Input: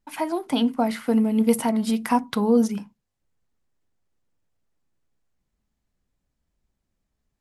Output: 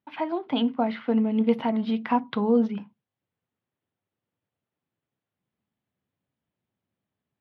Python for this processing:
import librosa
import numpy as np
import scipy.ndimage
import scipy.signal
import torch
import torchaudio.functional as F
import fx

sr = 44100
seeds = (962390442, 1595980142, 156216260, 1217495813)

y = scipy.signal.sosfilt(scipy.signal.ellip(3, 1.0, 40, [100.0, 3400.0], 'bandpass', fs=sr, output='sos'), x)
y = y * librosa.db_to_amplitude(-2.0)